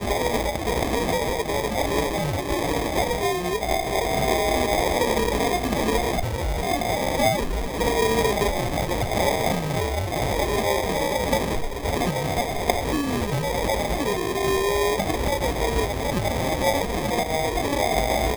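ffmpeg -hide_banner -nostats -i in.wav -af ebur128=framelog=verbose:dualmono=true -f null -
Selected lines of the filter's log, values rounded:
Integrated loudness:
  I:         -20.6 LUFS
  Threshold: -30.6 LUFS
Loudness range:
  LRA:         1.5 LU
  Threshold: -40.6 LUFS
  LRA low:   -21.3 LUFS
  LRA high:  -19.8 LUFS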